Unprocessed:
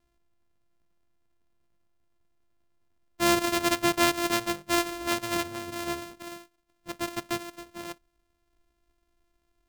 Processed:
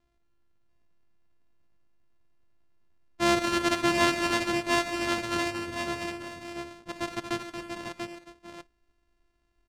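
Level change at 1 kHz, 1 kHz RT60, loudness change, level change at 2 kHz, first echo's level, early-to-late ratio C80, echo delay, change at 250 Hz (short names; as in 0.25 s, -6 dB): +0.5 dB, none, -1.0 dB, +1.5 dB, -17.0 dB, none, 77 ms, +0.5 dB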